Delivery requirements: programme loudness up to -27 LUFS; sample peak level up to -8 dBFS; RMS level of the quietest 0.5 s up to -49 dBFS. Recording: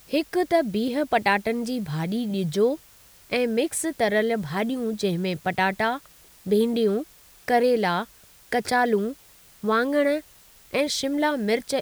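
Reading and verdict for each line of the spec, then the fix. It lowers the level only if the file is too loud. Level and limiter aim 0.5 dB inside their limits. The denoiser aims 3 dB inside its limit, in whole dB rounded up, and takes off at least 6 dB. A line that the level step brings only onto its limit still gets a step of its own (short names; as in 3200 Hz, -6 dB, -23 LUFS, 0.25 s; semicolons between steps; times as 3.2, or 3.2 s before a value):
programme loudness -24.5 LUFS: fail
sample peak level -8.5 dBFS: OK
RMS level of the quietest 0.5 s -53 dBFS: OK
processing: gain -3 dB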